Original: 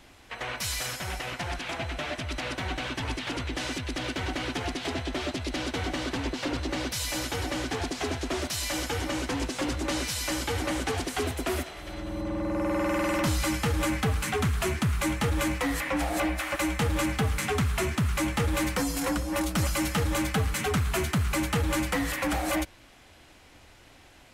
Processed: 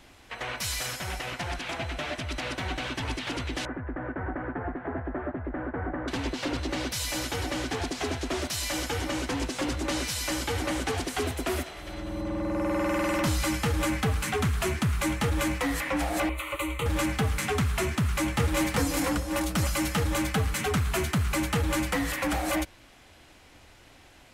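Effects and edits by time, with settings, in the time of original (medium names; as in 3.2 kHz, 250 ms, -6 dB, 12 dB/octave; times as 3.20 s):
3.65–6.08 s: elliptic low-pass 1.7 kHz, stop band 80 dB
16.29–16.86 s: static phaser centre 1.1 kHz, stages 8
18.01–18.72 s: echo throw 370 ms, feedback 35%, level -4 dB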